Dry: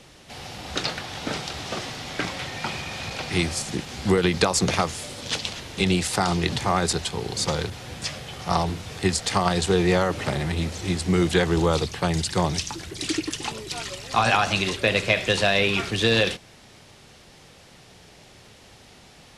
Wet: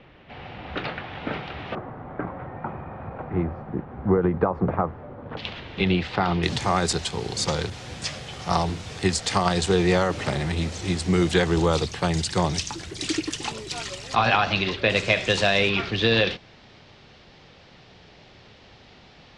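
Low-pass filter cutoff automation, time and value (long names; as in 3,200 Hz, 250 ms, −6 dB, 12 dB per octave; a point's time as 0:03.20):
low-pass filter 24 dB per octave
2,800 Hz
from 0:01.75 1,300 Hz
from 0:05.37 3,400 Hz
from 0:06.43 9,000 Hz
from 0:14.15 4,500 Hz
from 0:14.90 8,000 Hz
from 0:15.69 4,700 Hz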